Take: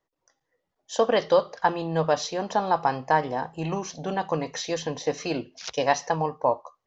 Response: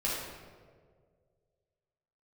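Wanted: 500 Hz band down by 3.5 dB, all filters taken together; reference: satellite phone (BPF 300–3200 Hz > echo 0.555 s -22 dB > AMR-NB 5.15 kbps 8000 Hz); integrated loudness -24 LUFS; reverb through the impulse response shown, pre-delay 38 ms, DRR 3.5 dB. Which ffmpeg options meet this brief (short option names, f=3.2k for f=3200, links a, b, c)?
-filter_complex "[0:a]equalizer=f=500:t=o:g=-3.5,asplit=2[a][b];[1:a]atrim=start_sample=2205,adelay=38[c];[b][c]afir=irnorm=-1:irlink=0,volume=-10.5dB[d];[a][d]amix=inputs=2:normalize=0,highpass=300,lowpass=3.2k,aecho=1:1:555:0.0794,volume=5dB" -ar 8000 -c:a libopencore_amrnb -b:a 5150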